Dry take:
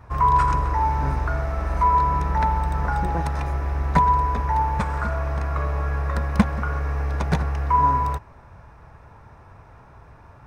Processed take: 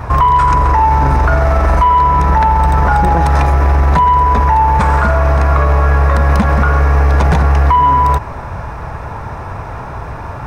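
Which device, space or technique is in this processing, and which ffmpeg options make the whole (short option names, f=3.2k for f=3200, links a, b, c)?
mastering chain: -af "equalizer=f=810:t=o:w=1.4:g=2.5,acompressor=threshold=-21dB:ratio=3,asoftclip=type=tanh:threshold=-14dB,alimiter=level_in=24.5dB:limit=-1dB:release=50:level=0:latency=1,volume=-3dB"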